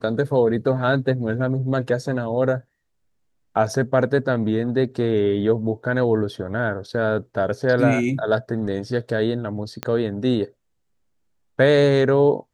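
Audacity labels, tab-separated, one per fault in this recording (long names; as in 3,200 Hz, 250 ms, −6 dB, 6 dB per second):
9.830000	9.830000	click −11 dBFS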